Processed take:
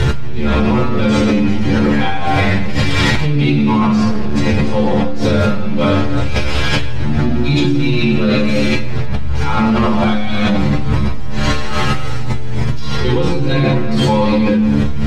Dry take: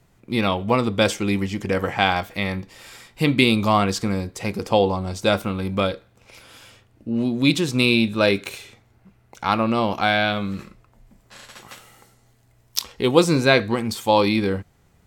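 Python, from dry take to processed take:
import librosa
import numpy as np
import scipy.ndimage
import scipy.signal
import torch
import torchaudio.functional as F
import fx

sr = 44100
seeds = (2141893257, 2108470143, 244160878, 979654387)

y = x + 0.5 * 10.0 ** (-18.0 / 20.0) * np.sign(x)
y = scipy.signal.sosfilt(scipy.signal.butter(2, 4200.0, 'lowpass', fs=sr, output='sos'), y)
y = fx.low_shelf(y, sr, hz=160.0, db=10.0)
y = fx.stiff_resonator(y, sr, f0_hz=71.0, decay_s=0.44, stiffness=0.002)
y = fx.room_shoebox(y, sr, seeds[0], volume_m3=1600.0, walls='mixed', distance_m=4.6)
y = fx.clip_hard(y, sr, threshold_db=-8.5, at=(4.1, 4.72))
y = fx.env_flatten(y, sr, amount_pct=100)
y = y * librosa.db_to_amplitude(-7.5)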